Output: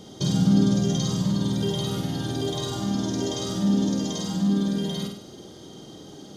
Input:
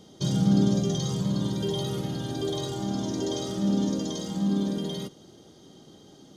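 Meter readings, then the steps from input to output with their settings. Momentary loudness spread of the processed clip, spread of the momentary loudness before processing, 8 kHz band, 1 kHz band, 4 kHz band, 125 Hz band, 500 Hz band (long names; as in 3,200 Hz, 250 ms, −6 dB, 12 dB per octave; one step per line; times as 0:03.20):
23 LU, 9 LU, +4.0 dB, +2.0 dB, +4.0 dB, +2.5 dB, +0.5 dB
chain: in parallel at +1.5 dB: downward compressor, threshold −38 dBFS, peak gain reduction 19 dB
on the sum: flutter between parallel walls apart 8.5 metres, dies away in 0.58 s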